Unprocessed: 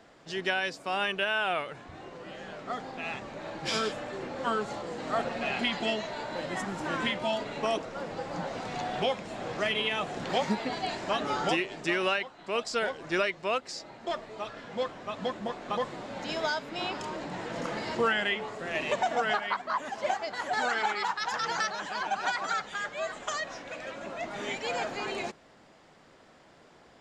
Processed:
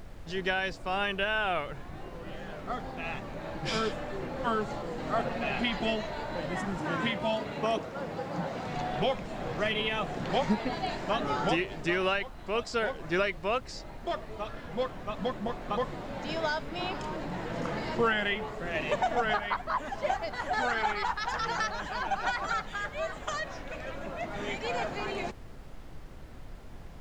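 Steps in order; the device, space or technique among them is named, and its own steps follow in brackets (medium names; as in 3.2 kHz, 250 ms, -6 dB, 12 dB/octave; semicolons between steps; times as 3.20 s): car interior (peaking EQ 140 Hz +6 dB 0.9 oct; treble shelf 4.5 kHz -7 dB; brown noise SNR 11 dB); 6.78–8.73 s: high-pass 70 Hz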